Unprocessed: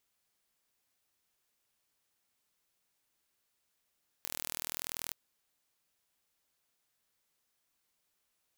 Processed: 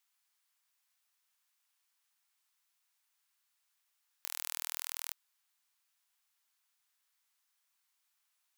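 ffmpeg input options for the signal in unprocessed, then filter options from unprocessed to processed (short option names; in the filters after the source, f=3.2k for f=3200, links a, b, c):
-f lavfi -i "aevalsrc='0.299*eq(mod(n,1092),0)':d=0.88:s=44100"
-af "highpass=f=860:w=0.5412,highpass=f=860:w=1.3066"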